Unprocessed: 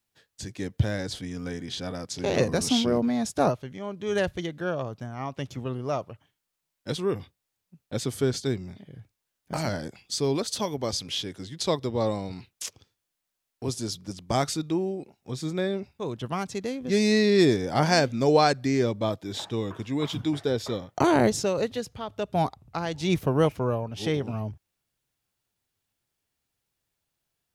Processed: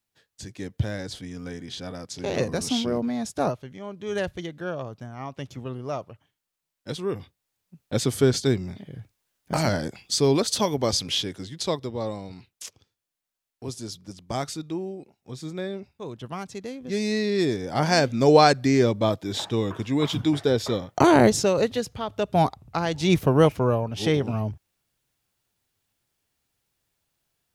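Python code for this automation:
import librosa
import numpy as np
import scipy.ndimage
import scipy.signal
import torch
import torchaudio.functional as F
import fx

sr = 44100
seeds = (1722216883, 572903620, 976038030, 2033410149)

y = fx.gain(x, sr, db=fx.line((7.01, -2.0), (7.97, 5.5), (11.11, 5.5), (12.01, -4.0), (17.47, -4.0), (18.3, 4.5)))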